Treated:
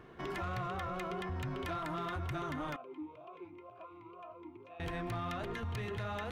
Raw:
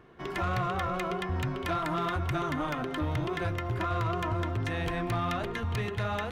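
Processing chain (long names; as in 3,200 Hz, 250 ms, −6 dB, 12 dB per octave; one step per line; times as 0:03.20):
brickwall limiter −33.5 dBFS, peak gain reduction 9.5 dB
0:02.76–0:04.80: formant filter swept between two vowels a-u 2 Hz
level +1 dB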